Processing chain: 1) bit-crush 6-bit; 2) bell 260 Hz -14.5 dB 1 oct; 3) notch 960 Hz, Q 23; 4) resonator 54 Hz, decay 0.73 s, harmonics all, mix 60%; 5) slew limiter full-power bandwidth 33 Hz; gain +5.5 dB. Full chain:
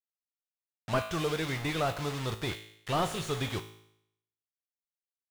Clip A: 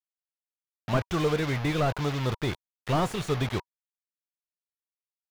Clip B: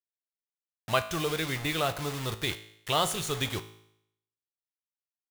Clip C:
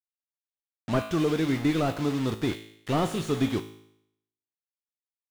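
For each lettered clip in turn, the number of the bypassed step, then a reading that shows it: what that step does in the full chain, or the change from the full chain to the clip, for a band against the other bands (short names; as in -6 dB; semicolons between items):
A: 4, 125 Hz band +4.5 dB; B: 5, distortion -3 dB; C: 2, 250 Hz band +10.5 dB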